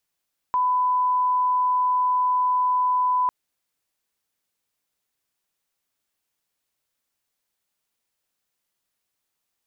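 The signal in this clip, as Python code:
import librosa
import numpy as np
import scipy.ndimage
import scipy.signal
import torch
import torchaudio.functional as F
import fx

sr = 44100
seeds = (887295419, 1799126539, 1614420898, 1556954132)

y = fx.lineup_tone(sr, length_s=2.75, level_db=-18.0)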